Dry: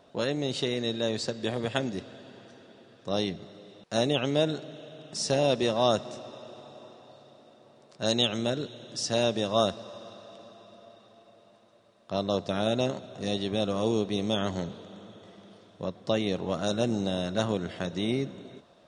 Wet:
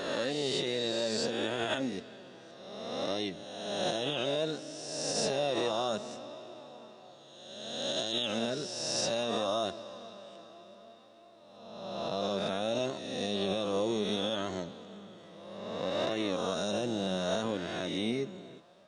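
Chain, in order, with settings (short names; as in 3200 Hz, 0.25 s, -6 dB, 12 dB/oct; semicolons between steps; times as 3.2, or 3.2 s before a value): spectral swells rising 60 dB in 1.62 s; low shelf 94 Hz -10 dB; limiter -17 dBFS, peak gain reduction 9.5 dB; flange 0.62 Hz, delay 2.7 ms, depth 3.6 ms, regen +49%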